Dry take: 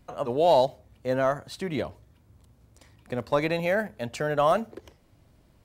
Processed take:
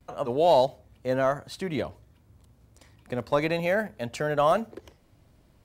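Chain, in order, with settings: gate with hold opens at -54 dBFS

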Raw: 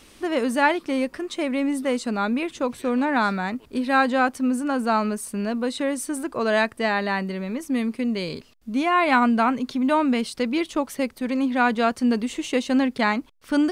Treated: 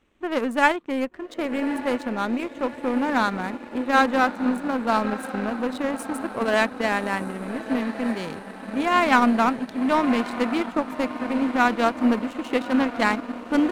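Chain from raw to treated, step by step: Wiener smoothing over 9 samples; diffused feedback echo 1.198 s, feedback 69%, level -10 dB; power-law curve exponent 1.4; gain +3.5 dB

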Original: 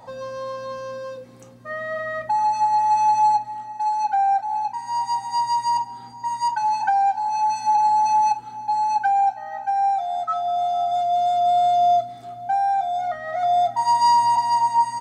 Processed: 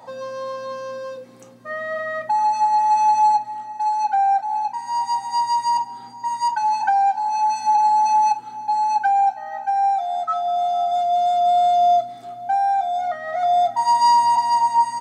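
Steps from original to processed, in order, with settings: HPF 170 Hz 12 dB/oct; gain +1.5 dB

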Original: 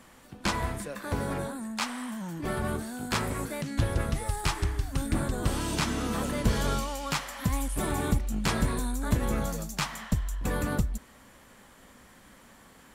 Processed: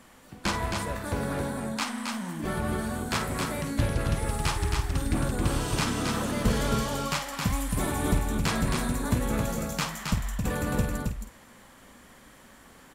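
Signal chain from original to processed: rattling part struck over -24 dBFS, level -34 dBFS; doubler 50 ms -9.5 dB; echo 0.269 s -4 dB

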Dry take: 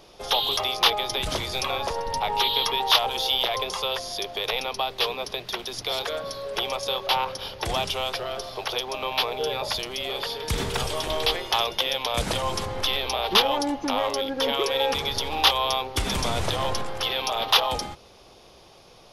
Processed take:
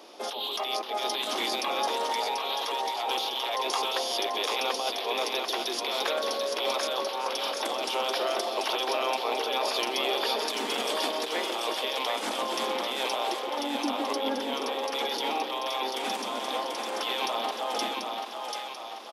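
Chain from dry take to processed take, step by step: negative-ratio compressor -30 dBFS, ratio -1; rippled Chebyshev high-pass 220 Hz, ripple 3 dB; harmoniser -3 st -13 dB; split-band echo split 520 Hz, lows 0.153 s, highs 0.738 s, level -4 dB

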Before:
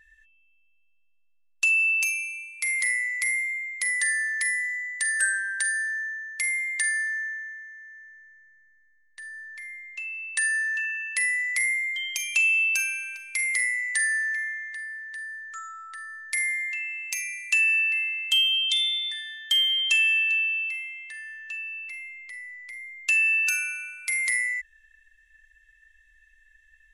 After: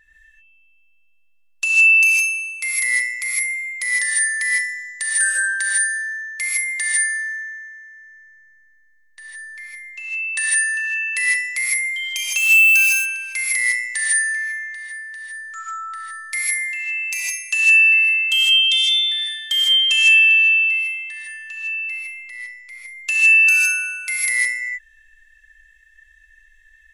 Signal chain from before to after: 12.37–12.89 switching spikes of -26 dBFS; non-linear reverb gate 0.18 s rising, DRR -4.5 dB; gain +1.5 dB

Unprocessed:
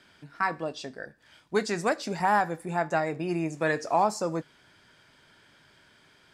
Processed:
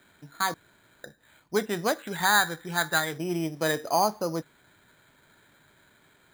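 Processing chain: 0.54–1.04 room tone; 1.98–3.18 fifteen-band EQ 250 Hz -6 dB, 630 Hz -7 dB, 1600 Hz +10 dB; careless resampling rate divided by 8×, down filtered, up hold

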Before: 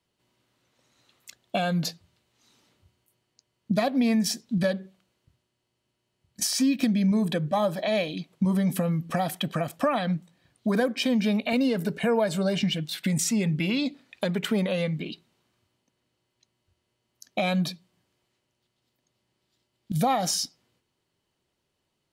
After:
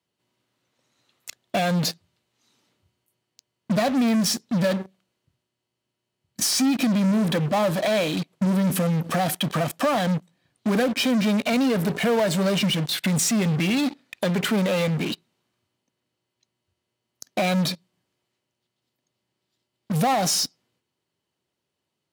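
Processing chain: in parallel at -9 dB: fuzz box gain 39 dB, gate -43 dBFS; on the sum: HPF 94 Hz; gain -3 dB

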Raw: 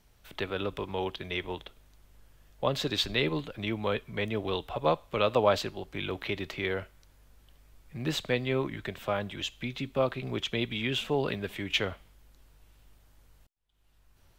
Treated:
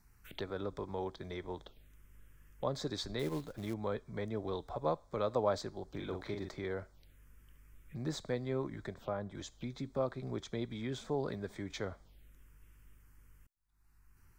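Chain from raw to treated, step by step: 8.94–9.35 high shelf 2400 Hz -9 dB; in parallel at +2 dB: compressor, threshold -42 dBFS, peak gain reduction 21.5 dB; on the sum: envelope phaser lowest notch 510 Hz, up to 2800 Hz, full sweep at -32 dBFS; 3.19–3.74 short-mantissa float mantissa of 2-bit; 5.9–6.49 doubler 44 ms -5 dB; gain -8 dB

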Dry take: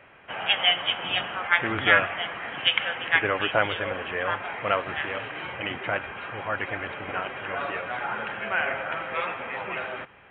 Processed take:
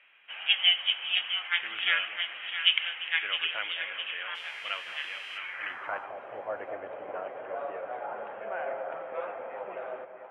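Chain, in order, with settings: 4.34–5.37 buzz 400 Hz, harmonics 30, -47 dBFS -1 dB/oct; split-band echo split 790 Hz, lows 0.213 s, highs 0.661 s, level -9 dB; band-pass sweep 2900 Hz -> 590 Hz, 5.33–6.23

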